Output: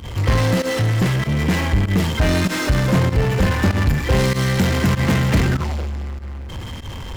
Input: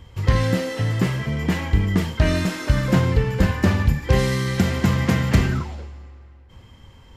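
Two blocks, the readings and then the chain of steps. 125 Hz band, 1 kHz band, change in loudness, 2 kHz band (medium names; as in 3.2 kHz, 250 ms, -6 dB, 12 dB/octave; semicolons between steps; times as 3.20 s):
+2.5 dB, +4.0 dB, +2.5 dB, +4.0 dB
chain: power-law waveshaper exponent 0.5; volume shaper 97 bpm, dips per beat 1, -17 dB, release 76 ms; trim -3 dB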